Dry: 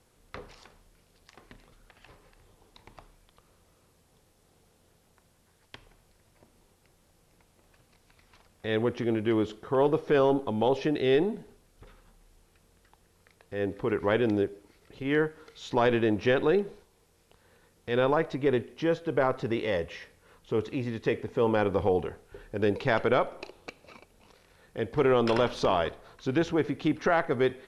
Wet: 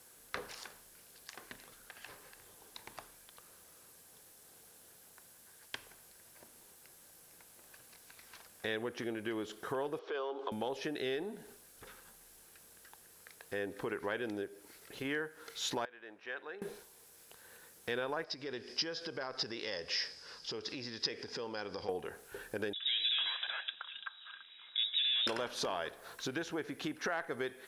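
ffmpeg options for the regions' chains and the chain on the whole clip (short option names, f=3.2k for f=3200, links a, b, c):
-filter_complex "[0:a]asettb=1/sr,asplit=3[a][b][c];[a]atrim=end=9.994[d];[b]atrim=start=9.99:end=10.52,asetpts=PTS-STARTPTS,afade=t=in:d=0.004:c=qsin,afade=t=out:st=0.526:d=0.004:c=qsin,acompressor=threshold=-33dB:ratio=3:attack=3.2:release=140:knee=1:detection=peak,highpass=f=360:w=0.5412,highpass=f=360:w=1.3066,equalizer=f=390:t=q:w=4:g=5,equalizer=f=1.1k:t=q:w=4:g=6,equalizer=f=1.8k:t=q:w=4:g=-5,equalizer=f=3.2k:t=q:w=4:g=5,lowpass=f=4.9k:w=0.5412,lowpass=f=4.9k:w=1.3066[e];[c]atrim=start=10.516[f];[d][e]acrossfade=d=0.004:c1=hsin:c2=qsin[g];[g][f]acrossfade=d=0.004:c1=qsin:c2=hsin,asettb=1/sr,asplit=3[h][i][j];[h]atrim=end=15.854[k];[i]atrim=start=15.85:end=16.62,asetpts=PTS-STARTPTS,afade=t=in:d=0.004:c=qsin,afade=t=out:st=0.766:d=0.004:c=qsin,lowpass=1.4k,aderivative[l];[j]atrim=start=16.616[m];[k][l]acrossfade=d=0.004:c1=hsin:c2=qsin[n];[n][m]acrossfade=d=0.004:c1=qsin:c2=hsin,asettb=1/sr,asplit=3[o][p][q];[o]atrim=end=18.244[r];[p]atrim=start=18.24:end=21.89,asetpts=PTS-STARTPTS,afade=t=in:d=0.004:c=qsin,afade=t=out:st=3.646:d=0.004:c=qsin,acompressor=threshold=-43dB:ratio=3:attack=3.2:release=140:knee=1:detection=peak,lowpass=f=5k:t=q:w=15[s];[q]atrim=start=21.886[t];[r][s]acrossfade=d=0.004:c1=hsin:c2=qsin[u];[u][t]acrossfade=d=0.004:c1=qsin:c2=hsin,asettb=1/sr,asplit=3[v][w][x];[v]atrim=end=22.734[y];[w]atrim=start=22.73:end=25.27,asetpts=PTS-STARTPTS,afade=t=in:d=0.004:c=qsin,afade=t=out:st=2.536:d=0.004:c=qsin,asoftclip=type=hard:threshold=-30dB,lowpass=f=3.3k:t=q:w=0.5098,lowpass=f=3.3k:t=q:w=0.6013,lowpass=f=3.3k:t=q:w=0.9,lowpass=f=3.3k:t=q:w=2.563,afreqshift=-3900,acrossover=split=480|1900[z][aa][ab];[z]adelay=50[ac];[aa]adelay=380[ad];[ac][ad][ab]amix=inputs=3:normalize=0,atrim=end_sample=112014[ae];[x]atrim=start=25.266[af];[y][ae]acrossfade=d=0.004:c1=hsin:c2=qsin[ag];[ag][af]acrossfade=d=0.004:c1=qsin:c2=hsin,equalizer=f=1.6k:w=5.6:g=7,acompressor=threshold=-35dB:ratio=6,aemphasis=mode=production:type=bsi,volume=1.5dB"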